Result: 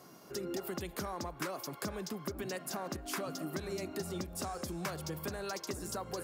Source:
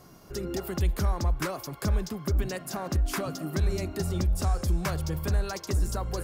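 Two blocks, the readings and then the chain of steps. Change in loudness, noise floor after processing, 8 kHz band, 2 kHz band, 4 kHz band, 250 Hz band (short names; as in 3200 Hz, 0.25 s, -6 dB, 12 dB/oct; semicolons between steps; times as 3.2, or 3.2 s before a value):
-10.0 dB, -54 dBFS, -4.0 dB, -5.0 dB, -4.5 dB, -7.0 dB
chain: HPF 200 Hz 12 dB/oct; compressor 2.5:1, threshold -35 dBFS, peak gain reduction 6 dB; gain -1.5 dB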